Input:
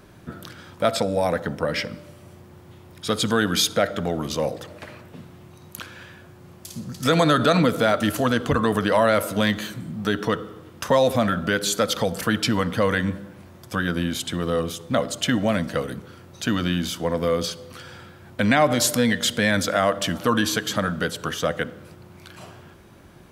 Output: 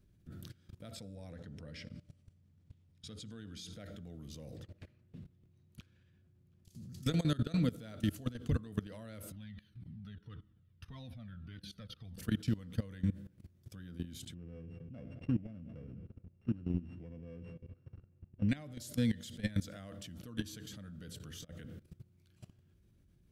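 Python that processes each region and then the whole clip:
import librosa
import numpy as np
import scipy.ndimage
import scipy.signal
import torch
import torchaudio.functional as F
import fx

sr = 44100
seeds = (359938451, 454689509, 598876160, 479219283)

y = fx.chain(x, sr, fx.lowpass(hz=8000.0, slope=12),
    fx.hum_notches(base_hz=60, count=10), at=(1.15, 3.73))
y = fx.chain(y, sr, fx.lowpass(hz=3500.0, slope=6),
    fx.echo_single(ms=721, db=-20.0), at=(4.57, 6.69))
y = fx.chain(y, sr, fx.moving_average(points=6),
    fx.peak_eq(hz=460.0, db=-10.5, octaves=1.3),
    fx.comb_cascade(direction='falling', hz=1.8), at=(9.32, 12.18))
y = fx.chain(y, sr, fx.sample_sort(block=16),
    fx.lowpass(hz=1100.0, slope=12),
    fx.echo_feedback(ms=210, feedback_pct=48, wet_db=-19.0), at=(14.34, 18.49))
y = fx.chain(y, sr, fx.over_compress(threshold_db=-31.0, ratio=-1.0),
    fx.doubler(ms=23.0, db=-12), at=(21.32, 21.79))
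y = fx.tone_stack(y, sr, knobs='10-0-1')
y = fx.level_steps(y, sr, step_db=19)
y = y * librosa.db_to_amplitude(9.0)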